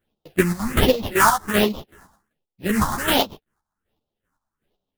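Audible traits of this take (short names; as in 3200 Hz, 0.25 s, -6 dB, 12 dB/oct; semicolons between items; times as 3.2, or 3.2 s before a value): aliases and images of a low sample rate 2300 Hz, jitter 20%; phasing stages 4, 1.3 Hz, lowest notch 430–1700 Hz; chopped level 2.6 Hz, depth 65%, duty 35%; a shimmering, thickened sound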